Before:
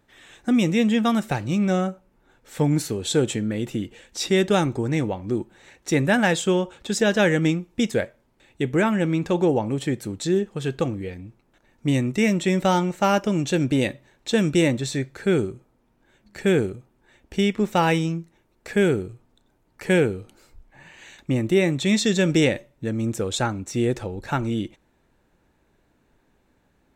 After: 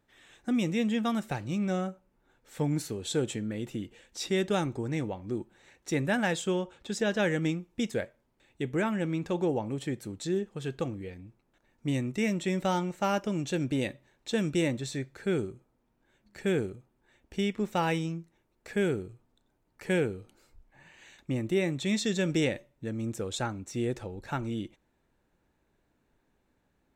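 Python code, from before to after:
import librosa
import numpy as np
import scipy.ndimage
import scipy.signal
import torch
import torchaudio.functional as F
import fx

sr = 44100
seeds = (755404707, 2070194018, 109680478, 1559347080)

y = fx.high_shelf(x, sr, hz=8000.0, db=-5.5, at=(6.64, 7.24))
y = y * librosa.db_to_amplitude(-8.5)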